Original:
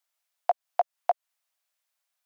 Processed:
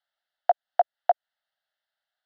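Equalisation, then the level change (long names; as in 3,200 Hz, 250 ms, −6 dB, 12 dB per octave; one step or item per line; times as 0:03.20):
high-frequency loss of the air 270 metres
low-shelf EQ 420 Hz −10.5 dB
phaser with its sweep stopped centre 1,600 Hz, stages 8
+7.5 dB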